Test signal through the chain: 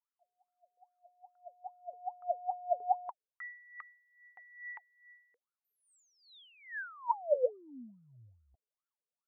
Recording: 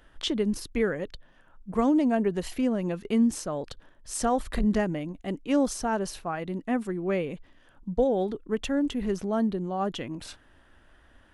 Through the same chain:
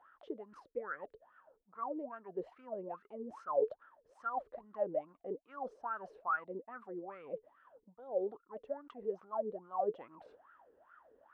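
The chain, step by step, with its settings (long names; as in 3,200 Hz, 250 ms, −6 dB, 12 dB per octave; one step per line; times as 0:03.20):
reversed playback
downward compressor 10 to 1, threshold −32 dBFS
reversed playback
high-shelf EQ 4,000 Hz −11 dB
LFO wah 2.4 Hz 430–1,400 Hz, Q 19
level +15 dB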